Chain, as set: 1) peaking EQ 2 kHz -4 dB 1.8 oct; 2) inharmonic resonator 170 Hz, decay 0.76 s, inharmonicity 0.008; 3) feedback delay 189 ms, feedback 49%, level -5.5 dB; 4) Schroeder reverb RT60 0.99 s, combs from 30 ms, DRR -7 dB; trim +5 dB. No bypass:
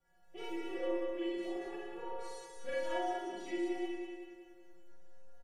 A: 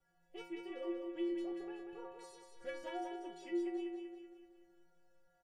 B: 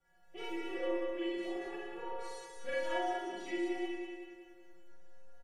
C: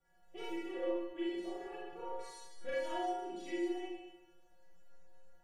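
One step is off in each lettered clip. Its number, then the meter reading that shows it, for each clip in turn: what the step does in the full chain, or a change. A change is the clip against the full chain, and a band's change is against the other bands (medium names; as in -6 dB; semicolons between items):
4, echo-to-direct 8.5 dB to -4.5 dB; 1, 2 kHz band +3.0 dB; 3, echo-to-direct 8.5 dB to 7.0 dB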